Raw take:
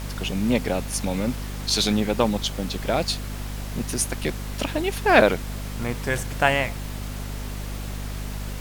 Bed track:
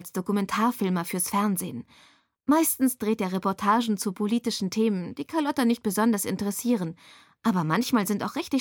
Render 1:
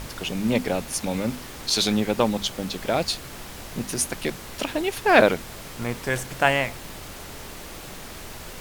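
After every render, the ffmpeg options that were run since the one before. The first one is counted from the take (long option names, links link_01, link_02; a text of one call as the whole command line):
ffmpeg -i in.wav -af "bandreject=frequency=50:width_type=h:width=6,bandreject=frequency=100:width_type=h:width=6,bandreject=frequency=150:width_type=h:width=6,bandreject=frequency=200:width_type=h:width=6,bandreject=frequency=250:width_type=h:width=6" out.wav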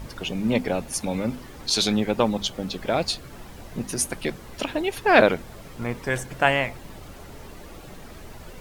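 ffmpeg -i in.wav -af "afftdn=noise_reduction=10:noise_floor=-39" out.wav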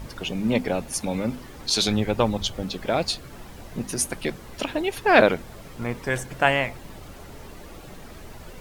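ffmpeg -i in.wav -filter_complex "[0:a]asettb=1/sr,asplit=3[link_01][link_02][link_03];[link_01]atrim=end=1.884[link_04];[link_02]atrim=start=1.88:end=2.63,asetpts=PTS-STARTPTS,afade=type=in:duration=0.004:curve=qsin,afade=type=out:start_time=0.746:duration=0.004:curve=qsin,lowshelf=frequency=130:width_type=q:width=1.5:gain=6.5[link_05];[link_03]atrim=start=2.626[link_06];[link_04][link_05]acrossfade=duration=0.004:curve1=hsin:curve2=qsin[link_07];[link_07][link_06]acrossfade=duration=0.004:curve1=qsin:curve2=hsin" out.wav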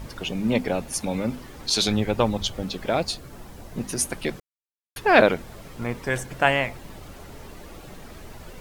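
ffmpeg -i in.wav -filter_complex "[0:a]asettb=1/sr,asplit=3[link_01][link_02][link_03];[link_01]atrim=end=3.004[link_04];[link_02]atrim=start=3:end=3.77,asetpts=PTS-STARTPTS,afade=type=in:duration=0.004:curve=qsin,afade=type=out:start_time=0.766:duration=0.004:curve=qsin,equalizer=frequency=2600:width=0.64:gain=-4[link_05];[link_03]atrim=start=3.766[link_06];[link_04][link_05]acrossfade=duration=0.004:curve1=hsin:curve2=qsin[link_07];[link_07][link_06]acrossfade=duration=0.004:curve1=qsin:curve2=hsin,asplit=3[link_08][link_09][link_10];[link_08]atrim=end=4.4,asetpts=PTS-STARTPTS,afade=type=out:start_time=4.396:duration=0.004:curve=hsin[link_11];[link_09]atrim=start=4.4:end=4.96,asetpts=PTS-STARTPTS,volume=0[link_12];[link_10]atrim=start=4.96,asetpts=PTS-STARTPTS,afade=type=in:duration=0.004:curve=hsin[link_13];[link_11][link_12][link_13]concat=n=3:v=0:a=1" out.wav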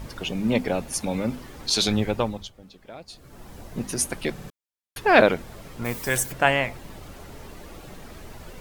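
ffmpeg -i in.wav -filter_complex "[0:a]asplit=3[link_01][link_02][link_03];[link_01]afade=type=out:start_time=5.84:duration=0.02[link_04];[link_02]aemphasis=mode=production:type=75fm,afade=type=in:start_time=5.84:duration=0.02,afade=type=out:start_time=6.31:duration=0.02[link_05];[link_03]afade=type=in:start_time=6.31:duration=0.02[link_06];[link_04][link_05][link_06]amix=inputs=3:normalize=0,asplit=6[link_07][link_08][link_09][link_10][link_11][link_12];[link_07]atrim=end=2.52,asetpts=PTS-STARTPTS,afade=type=out:start_time=2.04:duration=0.48:silence=0.125893[link_13];[link_08]atrim=start=2.52:end=3.07,asetpts=PTS-STARTPTS,volume=-18dB[link_14];[link_09]atrim=start=3.07:end=4.382,asetpts=PTS-STARTPTS,afade=type=in:duration=0.48:silence=0.125893[link_15];[link_10]atrim=start=4.318:end=4.382[link_16];[link_11]atrim=start=4.318:end=4.382[link_17];[link_12]atrim=start=4.498[link_18];[link_13][link_14][link_15]concat=n=3:v=0:a=1[link_19];[link_19][link_16]acrossfade=duration=0.004:curve1=hsin:curve2=hsin[link_20];[link_20][link_17]acrossfade=duration=0.004:curve1=hsin:curve2=hsin[link_21];[link_21][link_18]acrossfade=duration=0.004:curve1=hsin:curve2=hsin" out.wav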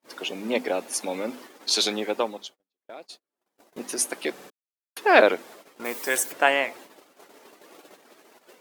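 ffmpeg -i in.wav -af "highpass=frequency=290:width=0.5412,highpass=frequency=290:width=1.3066,agate=range=-39dB:threshold=-44dB:ratio=16:detection=peak" out.wav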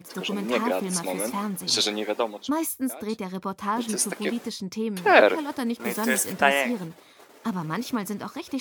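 ffmpeg -i in.wav -i bed.wav -filter_complex "[1:a]volume=-5dB[link_01];[0:a][link_01]amix=inputs=2:normalize=0" out.wav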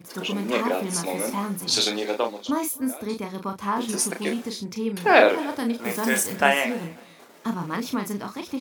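ffmpeg -i in.wav -filter_complex "[0:a]asplit=2[link_01][link_02];[link_02]adelay=35,volume=-6dB[link_03];[link_01][link_03]amix=inputs=2:normalize=0,aecho=1:1:266|532:0.0708|0.0205" out.wav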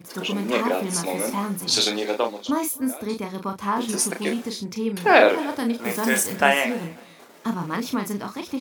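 ffmpeg -i in.wav -af "volume=1.5dB,alimiter=limit=-2dB:level=0:latency=1" out.wav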